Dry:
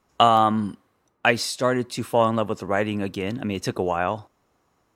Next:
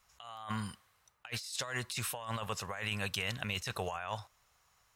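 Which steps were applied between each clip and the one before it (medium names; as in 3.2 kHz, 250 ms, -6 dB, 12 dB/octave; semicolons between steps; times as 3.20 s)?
amplifier tone stack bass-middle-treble 10-0-10; compressor with a negative ratio -40 dBFS, ratio -1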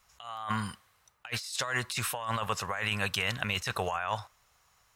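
dynamic bell 1.3 kHz, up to +5 dB, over -51 dBFS, Q 0.81; trim +3.5 dB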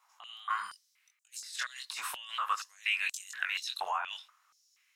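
chorus 1.5 Hz, delay 20 ms, depth 3.6 ms; step-sequenced high-pass 4.2 Hz 930–7100 Hz; trim -3.5 dB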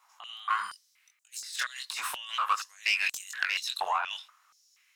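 self-modulated delay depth 0.061 ms; trim +4.5 dB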